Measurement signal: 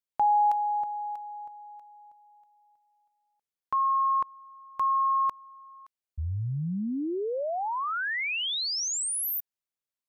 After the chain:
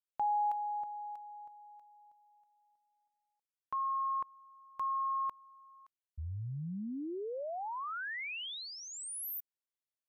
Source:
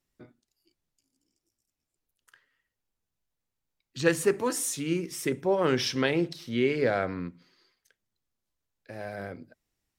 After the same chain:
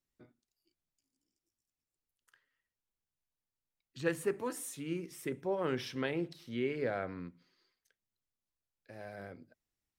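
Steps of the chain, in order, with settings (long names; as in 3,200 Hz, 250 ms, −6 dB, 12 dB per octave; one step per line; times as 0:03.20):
dynamic equaliser 5,700 Hz, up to −8 dB, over −49 dBFS, Q 1.1
level −9 dB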